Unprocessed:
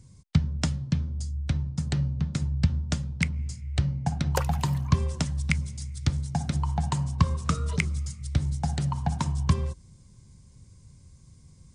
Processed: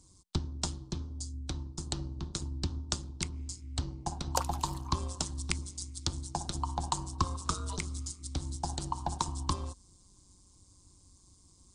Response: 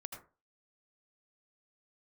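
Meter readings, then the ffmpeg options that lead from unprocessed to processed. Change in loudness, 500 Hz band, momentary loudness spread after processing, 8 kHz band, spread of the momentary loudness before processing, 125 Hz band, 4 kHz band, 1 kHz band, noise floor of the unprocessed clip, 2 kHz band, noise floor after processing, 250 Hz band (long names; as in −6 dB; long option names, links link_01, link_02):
−8.0 dB, −5.0 dB, 6 LU, +2.0 dB, 4 LU, −12.0 dB, 0.0 dB, −1.0 dB, −54 dBFS, −11.0 dB, −62 dBFS, −10.0 dB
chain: -af "tremolo=f=190:d=0.71,equalizer=frequency=125:width_type=o:width=1:gain=-10,equalizer=frequency=250:width_type=o:width=1:gain=-3,equalizer=frequency=500:width_type=o:width=1:gain=-3,equalizer=frequency=1000:width_type=o:width=1:gain=9,equalizer=frequency=2000:width_type=o:width=1:gain=-11,equalizer=frequency=4000:width_type=o:width=1:gain=7,equalizer=frequency=8000:width_type=o:width=1:gain=8,volume=-2.5dB"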